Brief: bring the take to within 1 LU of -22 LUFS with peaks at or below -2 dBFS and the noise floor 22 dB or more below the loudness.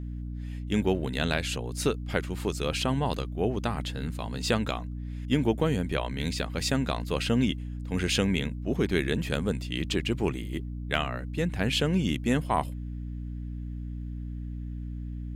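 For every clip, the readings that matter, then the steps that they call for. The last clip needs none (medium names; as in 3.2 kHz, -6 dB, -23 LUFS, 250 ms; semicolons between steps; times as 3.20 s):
hum 60 Hz; highest harmonic 300 Hz; hum level -33 dBFS; loudness -29.5 LUFS; peak level -9.0 dBFS; loudness target -22.0 LUFS
-> hum notches 60/120/180/240/300 Hz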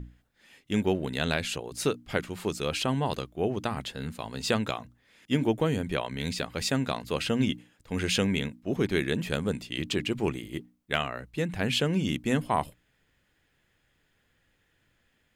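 hum not found; loudness -30.0 LUFS; peak level -9.0 dBFS; loudness target -22.0 LUFS
-> trim +8 dB; peak limiter -2 dBFS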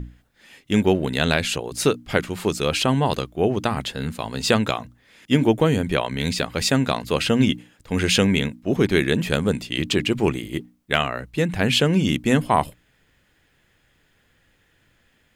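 loudness -22.0 LUFS; peak level -2.0 dBFS; noise floor -63 dBFS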